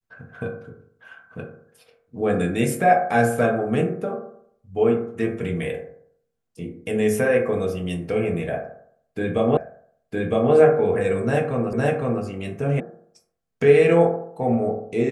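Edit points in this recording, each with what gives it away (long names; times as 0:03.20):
0:09.57: the same again, the last 0.96 s
0:11.73: the same again, the last 0.51 s
0:12.80: cut off before it has died away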